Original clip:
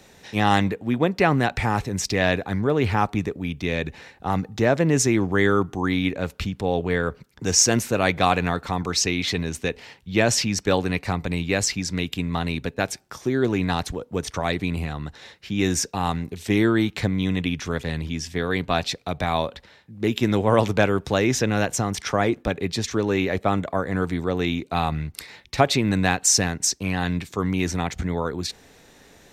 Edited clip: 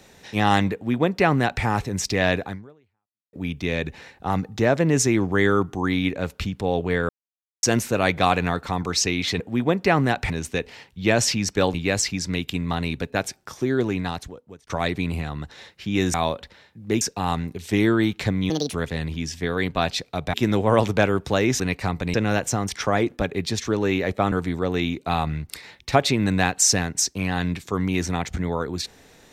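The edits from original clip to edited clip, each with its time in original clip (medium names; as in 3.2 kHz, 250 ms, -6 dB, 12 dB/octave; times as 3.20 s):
0.74–1.64 s: copy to 9.40 s
2.47–3.33 s: fade out exponential
7.09–7.63 s: mute
10.84–11.38 s: move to 21.40 s
13.36–14.31 s: fade out
17.27–17.67 s: speed 168%
19.27–20.14 s: move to 15.78 s
23.58–23.97 s: delete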